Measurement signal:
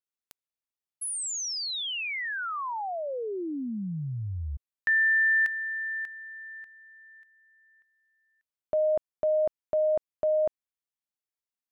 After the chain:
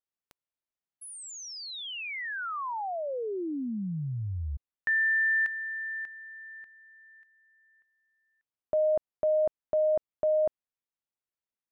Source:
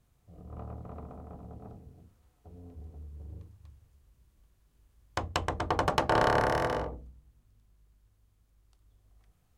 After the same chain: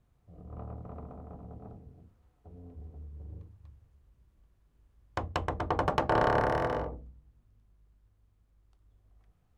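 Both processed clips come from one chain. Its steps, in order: high shelf 3300 Hz -12 dB

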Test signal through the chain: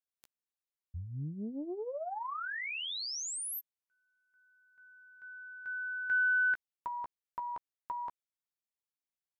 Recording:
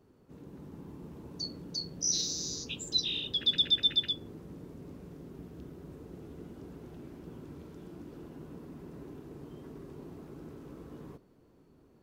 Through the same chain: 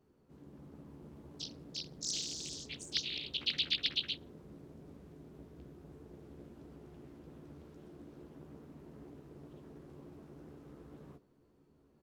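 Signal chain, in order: doubler 14 ms -7 dB; Doppler distortion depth 0.49 ms; gain -7 dB

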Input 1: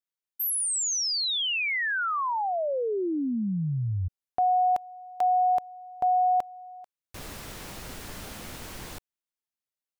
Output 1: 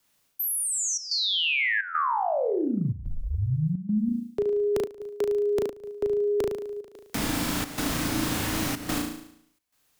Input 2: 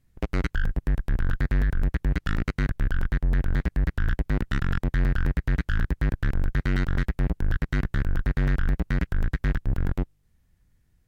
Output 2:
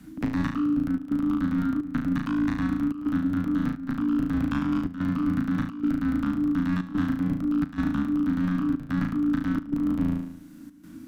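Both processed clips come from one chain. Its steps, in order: in parallel at -2 dB: limiter -24.5 dBFS; on the sum: flutter echo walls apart 6.2 m, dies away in 0.61 s; reverse; compressor 6:1, threshold -29 dBFS; reverse; frequency shift -320 Hz; step gate "xxxxxxx.xxxxx." 108 bpm -12 dB; three-band squash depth 40%; gain +5.5 dB

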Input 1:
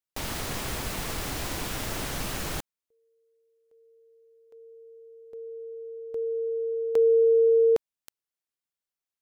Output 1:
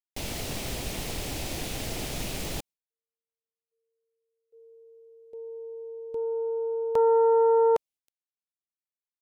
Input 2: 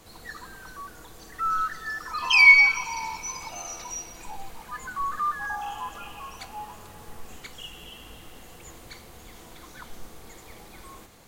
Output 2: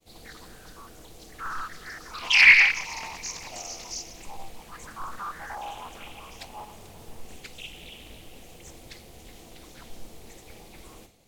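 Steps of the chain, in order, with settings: expander -46 dBFS, range -33 dB; band shelf 1300 Hz -9 dB 1.2 oct; Doppler distortion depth 0.6 ms

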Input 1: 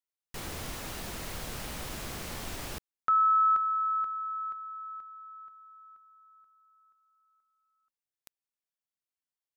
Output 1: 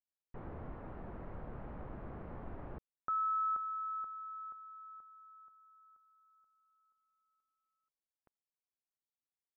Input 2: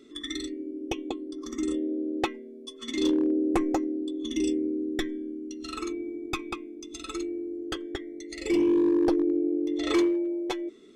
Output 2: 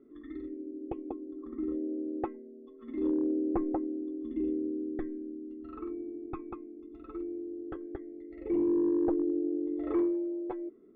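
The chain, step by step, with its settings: Bessel low-pass 950 Hz, order 4; gain -4.5 dB

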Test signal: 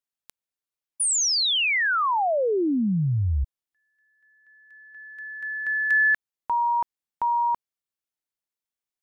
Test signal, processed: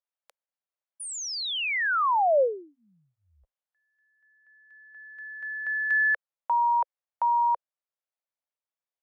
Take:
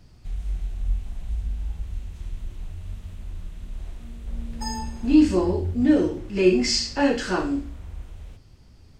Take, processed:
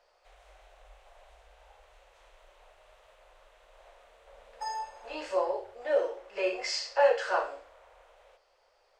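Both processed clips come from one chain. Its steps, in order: elliptic high-pass 530 Hz, stop band 50 dB; tilt -4 dB/oct

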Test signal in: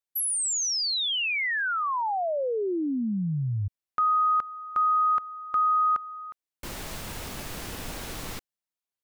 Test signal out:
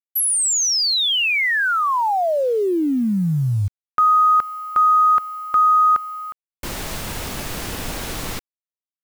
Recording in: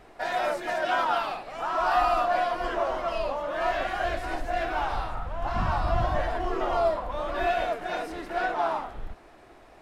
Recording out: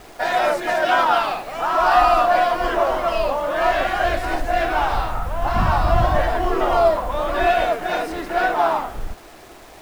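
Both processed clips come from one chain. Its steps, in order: bit-crush 9-bit; gain +8.5 dB

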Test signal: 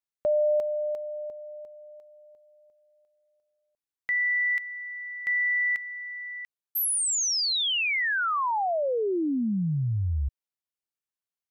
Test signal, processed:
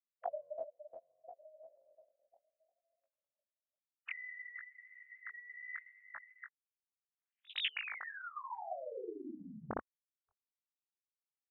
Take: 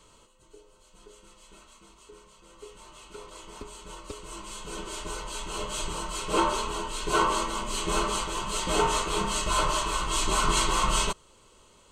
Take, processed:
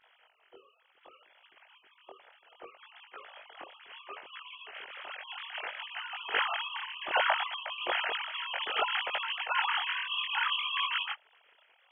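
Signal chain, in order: sine-wave speech; chorus 0.65 Hz, delay 18.5 ms, depth 5.3 ms; spectral gate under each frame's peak -10 dB weak; gain +5.5 dB

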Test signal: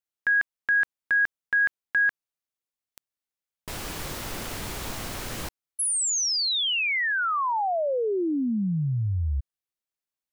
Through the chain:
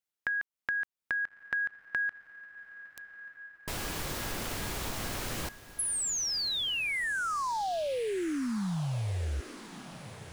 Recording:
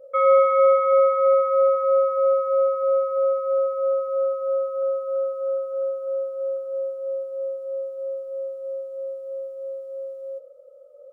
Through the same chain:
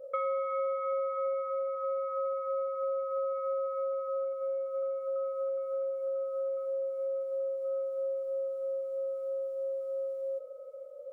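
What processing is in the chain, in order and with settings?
compressor 6:1, threshold -31 dBFS; diffused feedback echo 1.248 s, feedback 65%, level -16 dB

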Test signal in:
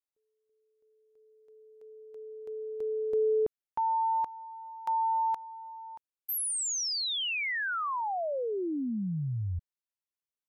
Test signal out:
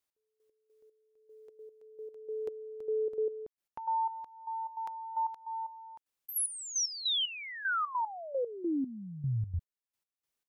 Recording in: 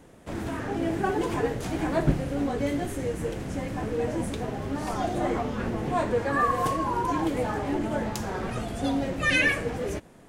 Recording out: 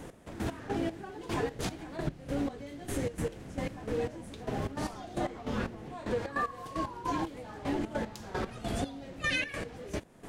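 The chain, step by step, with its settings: dynamic EQ 4100 Hz, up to +6 dB, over -49 dBFS, Q 1.2; compressor 6:1, threshold -37 dBFS; step gate "x...x..xx....xx." 151 bpm -12 dB; gain +7.5 dB

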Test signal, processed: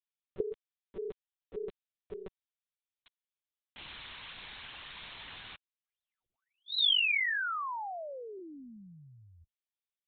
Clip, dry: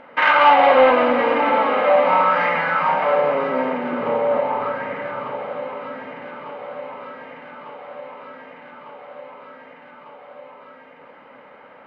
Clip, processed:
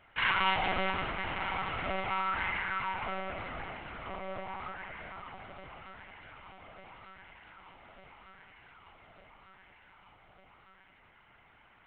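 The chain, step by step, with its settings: differentiator; monotone LPC vocoder at 8 kHz 190 Hz

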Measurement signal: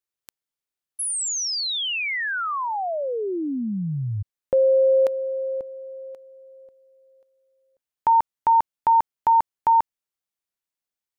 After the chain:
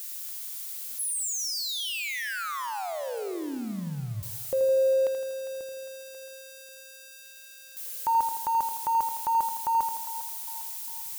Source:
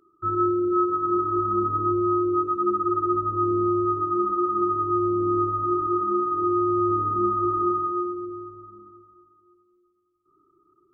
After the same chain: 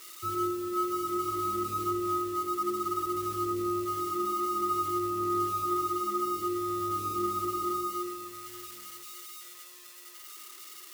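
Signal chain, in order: switching spikes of -25 dBFS; split-band echo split 610 Hz, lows 0.113 s, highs 0.403 s, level -14 dB; lo-fi delay 81 ms, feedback 55%, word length 8-bit, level -8.5 dB; gain -8 dB

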